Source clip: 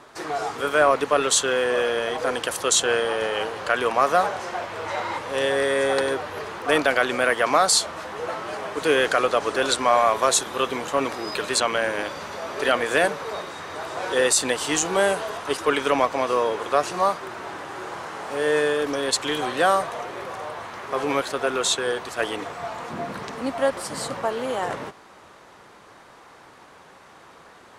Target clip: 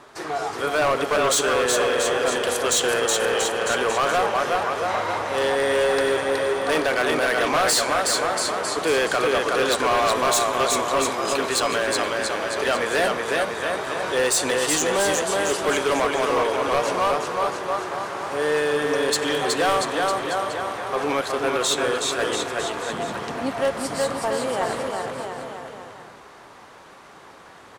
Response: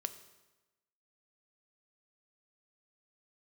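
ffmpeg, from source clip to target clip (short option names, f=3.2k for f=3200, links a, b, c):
-filter_complex "[0:a]aecho=1:1:370|684.5|951.8|1179|1372:0.631|0.398|0.251|0.158|0.1,asplit=2[a][b];[1:a]atrim=start_sample=2205[c];[b][c]afir=irnorm=-1:irlink=0,volume=1dB[d];[a][d]amix=inputs=2:normalize=0,volume=10.5dB,asoftclip=hard,volume=-10.5dB,volume=-5.5dB"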